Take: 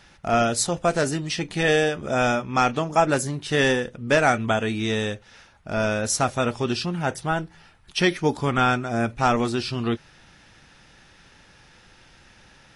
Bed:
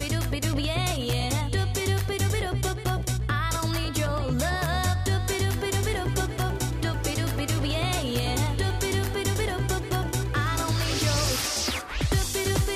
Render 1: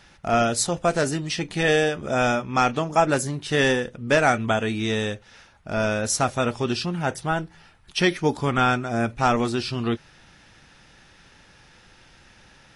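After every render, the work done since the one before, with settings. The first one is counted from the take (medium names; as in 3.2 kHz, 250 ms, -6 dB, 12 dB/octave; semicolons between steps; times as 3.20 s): no audible change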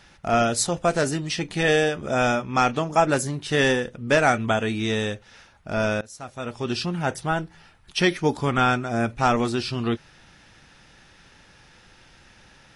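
6.01–6.79 s: fade in quadratic, from -20.5 dB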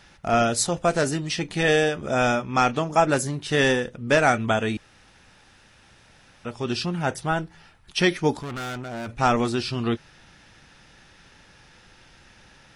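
4.77–6.45 s: room tone; 8.39–9.09 s: valve stage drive 30 dB, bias 0.7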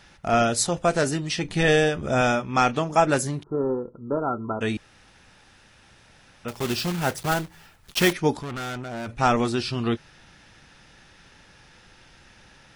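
1.44–2.21 s: bass shelf 120 Hz +9.5 dB; 3.43–4.61 s: rippled Chebyshev low-pass 1.4 kHz, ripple 9 dB; 6.48–8.13 s: block-companded coder 3-bit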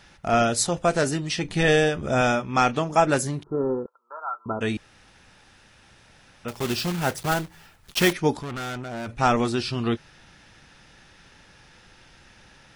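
3.86–4.46 s: high-pass 940 Hz 24 dB/octave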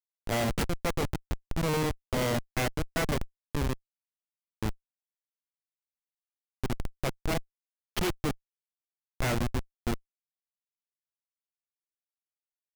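self-modulated delay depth 0.49 ms; Schmitt trigger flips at -19 dBFS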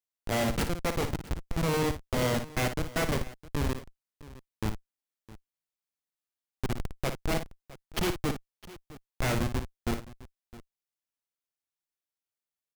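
multi-tap echo 56/661 ms -9/-18.5 dB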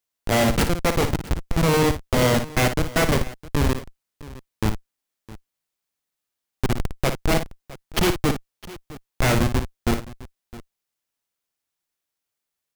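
trim +9 dB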